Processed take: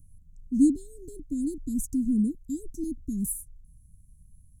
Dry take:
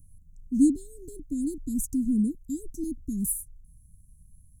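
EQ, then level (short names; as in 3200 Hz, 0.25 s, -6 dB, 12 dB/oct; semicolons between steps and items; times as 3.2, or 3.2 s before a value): high shelf 9800 Hz -6 dB; 0.0 dB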